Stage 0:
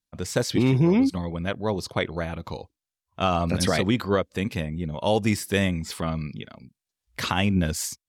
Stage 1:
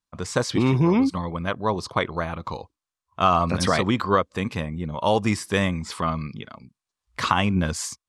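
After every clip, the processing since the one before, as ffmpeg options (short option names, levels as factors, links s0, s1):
-af "lowpass=f=10000:w=0.5412,lowpass=f=10000:w=1.3066,equalizer=f=1100:t=o:w=0.61:g=11"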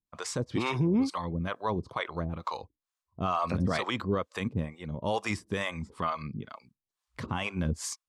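-filter_complex "[0:a]acrossover=split=480[s0][s1];[s0]aeval=exprs='val(0)*(1-1/2+1/2*cos(2*PI*2.2*n/s))':c=same[s2];[s1]aeval=exprs='val(0)*(1-1/2-1/2*cos(2*PI*2.2*n/s))':c=same[s3];[s2][s3]amix=inputs=2:normalize=0,alimiter=limit=0.112:level=0:latency=1:release=24"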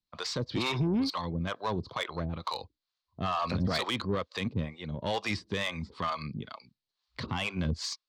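-filter_complex "[0:a]lowpass=f=4300:t=q:w=4,acrossover=split=110[s0][s1];[s1]asoftclip=type=tanh:threshold=0.0708[s2];[s0][s2]amix=inputs=2:normalize=0"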